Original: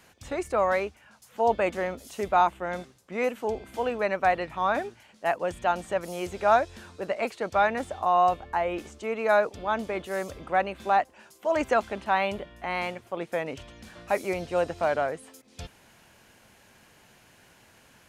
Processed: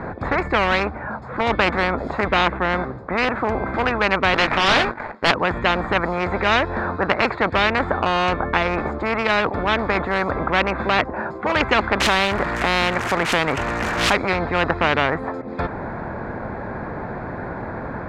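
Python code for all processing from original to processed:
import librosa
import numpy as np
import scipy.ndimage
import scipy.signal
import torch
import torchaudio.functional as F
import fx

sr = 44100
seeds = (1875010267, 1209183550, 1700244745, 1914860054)

y = fx.chain(x, sr, fx.highpass(hz=1000.0, slope=6),
    fx.doubler(ms=21.0, db=-8.0),
    fx.leveller(passes=3), at=(4.34, 5.31))
y = fx.chain(y, sr, fx.crossing_spikes(level_db=-25.5),
    fx.pre_swell(db_per_s=89.0), at=(12.0, 14.13))
y = fx.wiener(y, sr, points=15)
y = scipy.signal.sosfilt(scipy.signal.butter(2, 1700.0, 'lowpass', fs=sr, output='sos'), y)
y = fx.spectral_comp(y, sr, ratio=4.0)
y = y * librosa.db_to_amplitude(8.0)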